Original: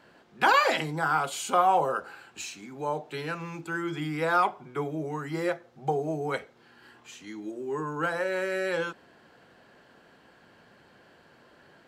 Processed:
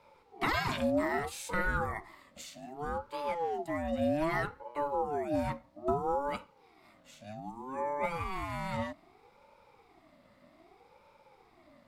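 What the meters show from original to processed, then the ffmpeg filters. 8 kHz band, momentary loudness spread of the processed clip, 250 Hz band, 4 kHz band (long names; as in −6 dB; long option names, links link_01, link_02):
−8.0 dB, 14 LU, −1.5 dB, −8.0 dB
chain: -af "equalizer=frequency=160:width_type=o:width=0.67:gain=11,equalizer=frequency=400:width_type=o:width=0.67:gain=-8,equalizer=frequency=1000:width_type=o:width=0.67:gain=-12,equalizer=frequency=2500:width_type=o:width=0.67:gain=-9,equalizer=frequency=6300:width_type=o:width=0.67:gain=-7,aeval=exprs='val(0)*sin(2*PI*560*n/s+560*0.3/0.63*sin(2*PI*0.63*n/s))':channel_layout=same"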